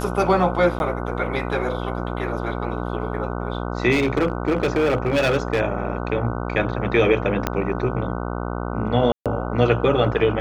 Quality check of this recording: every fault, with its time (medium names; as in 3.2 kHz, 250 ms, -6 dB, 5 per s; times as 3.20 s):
buzz 60 Hz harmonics 25 -27 dBFS
0.79–0.80 s: dropout 11 ms
3.91–5.61 s: clipped -15 dBFS
7.47 s: pop -6 dBFS
9.12–9.26 s: dropout 137 ms